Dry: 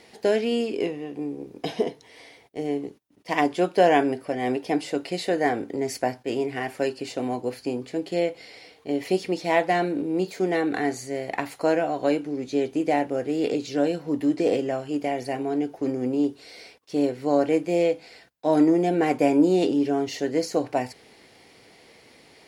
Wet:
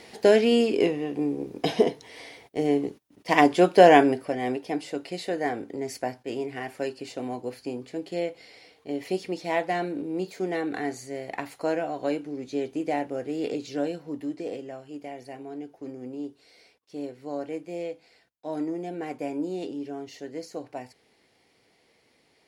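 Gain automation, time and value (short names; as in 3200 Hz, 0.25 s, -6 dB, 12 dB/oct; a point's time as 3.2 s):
3.95 s +4 dB
4.66 s -5 dB
13.78 s -5 dB
14.51 s -12 dB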